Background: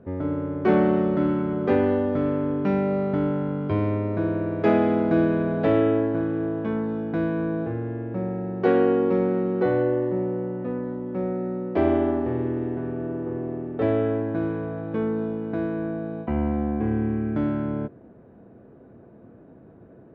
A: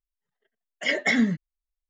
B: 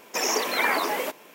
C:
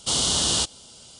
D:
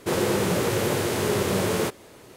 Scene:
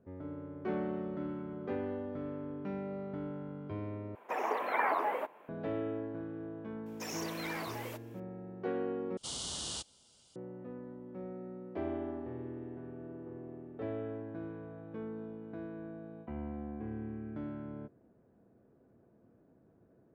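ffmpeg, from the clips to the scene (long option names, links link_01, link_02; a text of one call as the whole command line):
ffmpeg -i bed.wav -i cue0.wav -i cue1.wav -i cue2.wav -filter_complex "[2:a]asplit=2[link_01][link_02];[0:a]volume=-16.5dB[link_03];[link_01]firequalizer=gain_entry='entry(180,0);entry(760,10);entry(5300,-23);entry(9600,-14)':delay=0.05:min_phase=1[link_04];[link_02]volume=21.5dB,asoftclip=hard,volume=-21.5dB[link_05];[link_03]asplit=3[link_06][link_07][link_08];[link_06]atrim=end=4.154[link_09];[link_04]atrim=end=1.34,asetpts=PTS-STARTPTS,volume=-12.5dB[link_10];[link_07]atrim=start=5.486:end=9.174[link_11];[3:a]atrim=end=1.19,asetpts=PTS-STARTPTS,volume=-17.5dB[link_12];[link_08]atrim=start=10.356[link_13];[link_05]atrim=end=1.34,asetpts=PTS-STARTPTS,volume=-15.5dB,afade=type=in:duration=0.004:curve=hsin,afade=type=out:start_time=1.336:duration=0.004:curve=hsin,adelay=6860[link_14];[link_09][link_10]acrossfade=duration=0.004:curve1=hsin:curve2=hsin[link_15];[link_15][link_11]acrossfade=duration=0.004:curve1=hsin:curve2=hsin[link_16];[link_16][link_12]acrossfade=duration=0.004:curve1=hsin:curve2=hsin[link_17];[link_17][link_13]acrossfade=duration=0.004:curve1=hsin:curve2=hsin[link_18];[link_18][link_14]amix=inputs=2:normalize=0" out.wav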